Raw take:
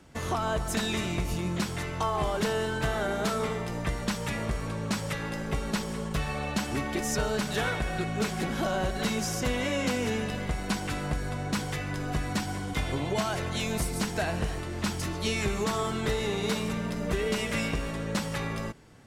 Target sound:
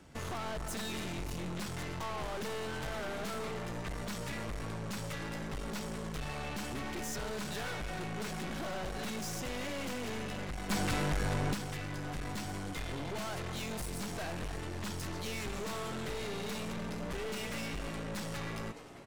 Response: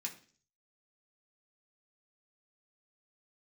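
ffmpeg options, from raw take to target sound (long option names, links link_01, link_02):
-filter_complex "[0:a]asplit=6[link_01][link_02][link_03][link_04][link_05][link_06];[link_02]adelay=307,afreqshift=130,volume=-19.5dB[link_07];[link_03]adelay=614,afreqshift=260,volume=-23.8dB[link_08];[link_04]adelay=921,afreqshift=390,volume=-28.1dB[link_09];[link_05]adelay=1228,afreqshift=520,volume=-32.4dB[link_10];[link_06]adelay=1535,afreqshift=650,volume=-36.7dB[link_11];[link_01][link_07][link_08][link_09][link_10][link_11]amix=inputs=6:normalize=0,aeval=exprs='(tanh(70.8*val(0)+0.5)-tanh(0.5))/70.8':channel_layout=same,asplit=3[link_12][link_13][link_14];[link_12]afade=type=out:start_time=10.69:duration=0.02[link_15];[link_13]acontrast=88,afade=type=in:start_time=10.69:duration=0.02,afade=type=out:start_time=11.53:duration=0.02[link_16];[link_14]afade=type=in:start_time=11.53:duration=0.02[link_17];[link_15][link_16][link_17]amix=inputs=3:normalize=0"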